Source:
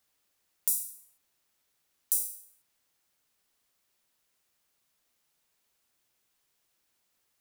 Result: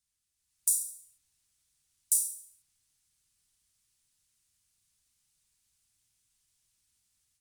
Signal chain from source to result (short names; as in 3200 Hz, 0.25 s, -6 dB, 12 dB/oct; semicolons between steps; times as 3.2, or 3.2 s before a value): EQ curve 100 Hz 0 dB, 510 Hz -25 dB, 9400 Hz -2 dB, 14000 Hz -16 dB; AGC gain up to 9 dB; MP3 96 kbps 48000 Hz